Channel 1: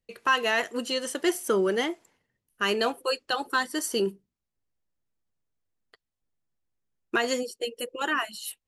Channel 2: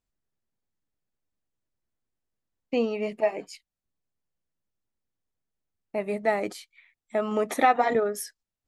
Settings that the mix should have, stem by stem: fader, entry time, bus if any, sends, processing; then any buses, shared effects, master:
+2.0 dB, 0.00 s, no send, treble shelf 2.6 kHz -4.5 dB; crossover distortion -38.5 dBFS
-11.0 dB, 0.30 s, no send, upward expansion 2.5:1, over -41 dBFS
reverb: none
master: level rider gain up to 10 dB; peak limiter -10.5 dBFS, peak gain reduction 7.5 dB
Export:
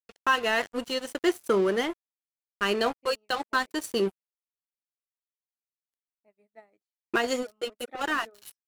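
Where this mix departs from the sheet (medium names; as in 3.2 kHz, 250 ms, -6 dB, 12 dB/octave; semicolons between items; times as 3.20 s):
stem 2 -11.0 dB -> -20.5 dB; master: missing level rider gain up to 10 dB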